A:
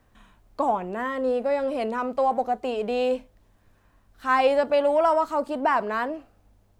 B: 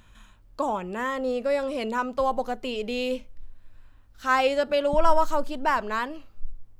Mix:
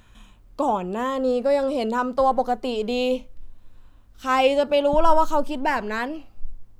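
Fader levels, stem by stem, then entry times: -3.0, +1.5 dB; 0.00, 0.00 s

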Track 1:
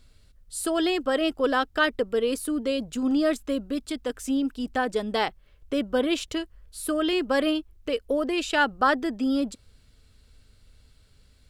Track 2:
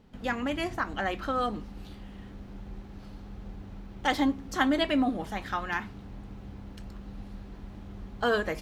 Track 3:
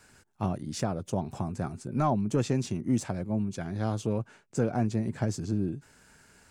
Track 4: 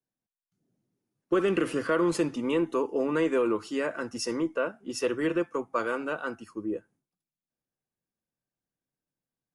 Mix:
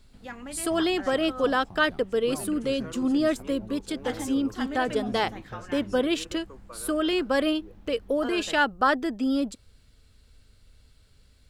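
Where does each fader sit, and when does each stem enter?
-0.5, -9.5, -14.5, -17.0 dB; 0.00, 0.00, 0.30, 0.95 s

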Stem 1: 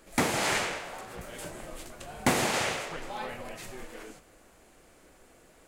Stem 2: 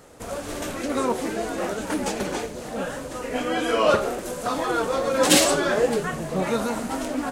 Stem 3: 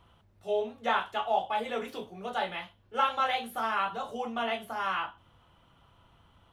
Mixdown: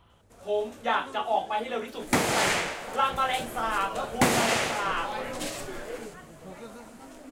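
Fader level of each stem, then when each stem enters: +2.5, -19.0, +1.5 dB; 1.95, 0.10, 0.00 s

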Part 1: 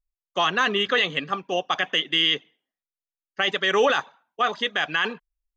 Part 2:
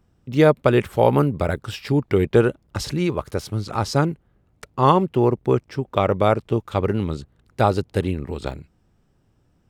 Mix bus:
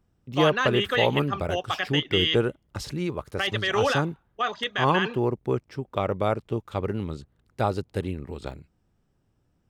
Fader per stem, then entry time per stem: -4.0, -7.0 dB; 0.00, 0.00 s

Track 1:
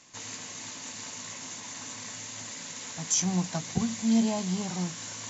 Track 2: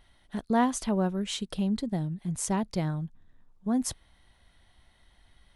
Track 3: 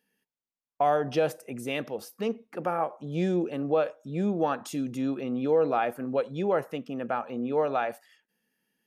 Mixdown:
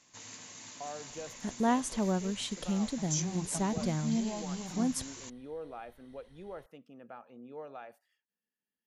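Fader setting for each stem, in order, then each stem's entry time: -8.0, -3.5, -18.5 dB; 0.00, 1.10, 0.00 s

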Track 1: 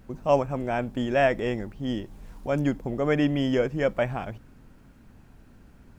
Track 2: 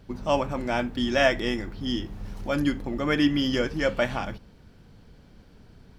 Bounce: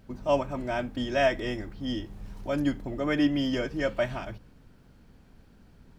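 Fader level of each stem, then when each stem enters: -5.5, -7.5 dB; 0.00, 0.00 s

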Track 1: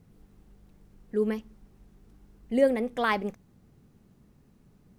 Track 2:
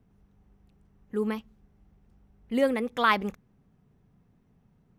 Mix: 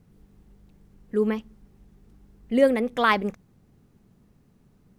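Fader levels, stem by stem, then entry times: -0.5, -3.0 dB; 0.00, 0.00 s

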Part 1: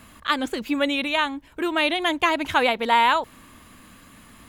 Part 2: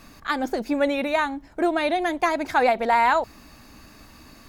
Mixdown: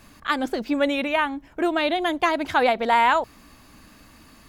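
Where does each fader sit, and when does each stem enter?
-6.5, -4.0 dB; 0.00, 0.00 s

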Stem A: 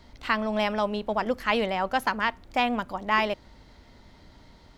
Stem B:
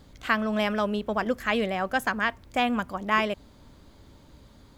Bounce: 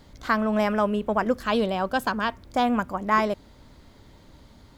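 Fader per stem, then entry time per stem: -4.5, 0.0 dB; 0.00, 0.00 s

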